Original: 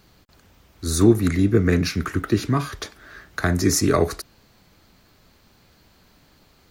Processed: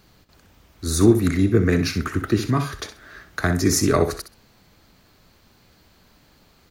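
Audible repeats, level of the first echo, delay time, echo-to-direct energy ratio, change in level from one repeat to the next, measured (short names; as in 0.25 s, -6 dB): 2, -11.0 dB, 64 ms, -11.0 dB, -15.0 dB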